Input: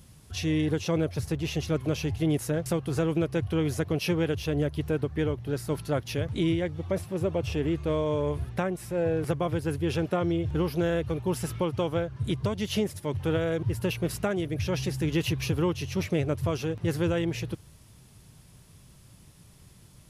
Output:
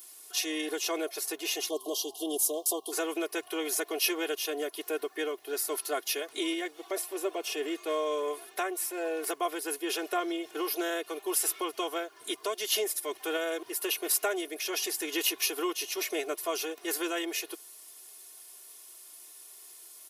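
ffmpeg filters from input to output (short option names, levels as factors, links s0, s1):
-filter_complex "[0:a]asplit=3[s0][s1][s2];[s0]afade=t=out:st=1.68:d=0.02[s3];[s1]asuperstop=centerf=1800:order=20:qfactor=1,afade=t=in:st=1.68:d=0.02,afade=t=out:st=2.91:d=0.02[s4];[s2]afade=t=in:st=2.91:d=0.02[s5];[s3][s4][s5]amix=inputs=3:normalize=0,highpass=f=380:w=0.5412,highpass=f=380:w=1.3066,aemphasis=mode=production:type=bsi,aecho=1:1:2.8:0.89,volume=0.794"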